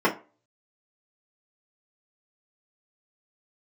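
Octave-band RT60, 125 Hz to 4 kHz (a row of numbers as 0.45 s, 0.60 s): 0.30 s, 0.35 s, 0.35 s, 0.35 s, 0.30 s, 0.20 s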